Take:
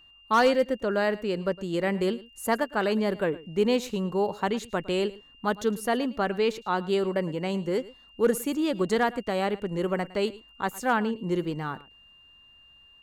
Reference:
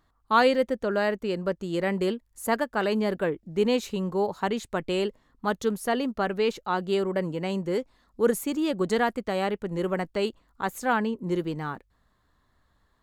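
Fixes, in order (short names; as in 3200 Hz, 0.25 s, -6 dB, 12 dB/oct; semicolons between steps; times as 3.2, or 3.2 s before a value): clip repair -13.5 dBFS; notch 2800 Hz, Q 30; inverse comb 0.11 s -19.5 dB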